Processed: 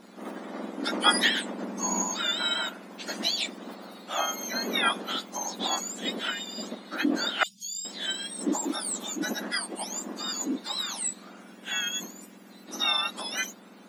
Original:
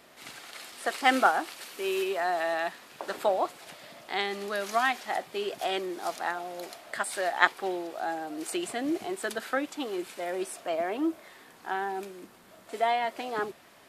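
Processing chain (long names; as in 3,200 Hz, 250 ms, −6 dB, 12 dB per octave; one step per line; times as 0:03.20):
frequency axis turned over on the octave scale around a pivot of 1,600 Hz
0:07.43–0:07.85: inverse Chebyshev band-stop filter 330–1,900 Hz, stop band 50 dB
level +4 dB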